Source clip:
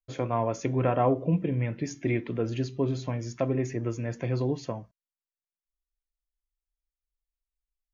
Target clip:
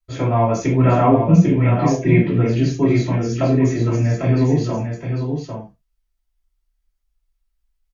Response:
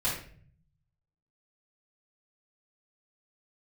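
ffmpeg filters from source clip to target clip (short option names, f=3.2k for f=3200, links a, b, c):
-filter_complex "[0:a]aecho=1:1:798:0.501[a];[1:a]atrim=start_sample=2205,atrim=end_sample=6615,asetrate=57330,aresample=44100[b];[a][b]afir=irnorm=-1:irlink=0,volume=4dB"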